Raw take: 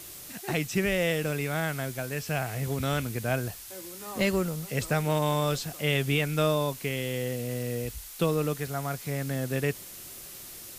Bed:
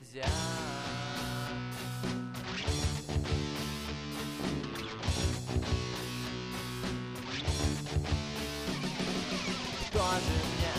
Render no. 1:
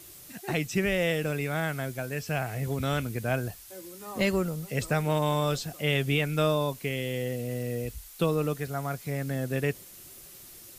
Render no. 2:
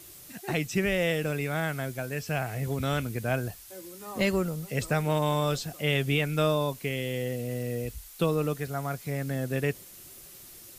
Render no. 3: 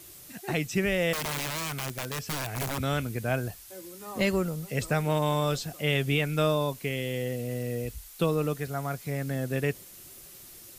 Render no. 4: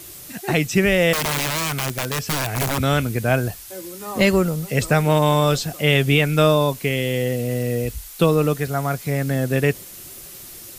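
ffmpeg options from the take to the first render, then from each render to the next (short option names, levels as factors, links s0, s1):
-af "afftdn=nr=6:nf=-44"
-af anull
-filter_complex "[0:a]asettb=1/sr,asplit=3[s0][s1][s2];[s0]atrim=end=1.134[s3];[s1]atrim=start=1.13:end=2.78,asetpts=PTS-STARTPTS,afade=t=in:d=0.004:c=qsin,afade=t=out:st=1.646:d=0.004:c=qsin,aeval=exprs='(mod(20*val(0)+1,2)-1)/20':c=same[s4];[s2]atrim=start=2.776[s5];[s3][s4]acrossfade=d=0.004:c1=hsin:c2=qsin[s6];[s6][s5]acrossfade=d=0.004:c1=qsin:c2=hsin"
-af "volume=2.99"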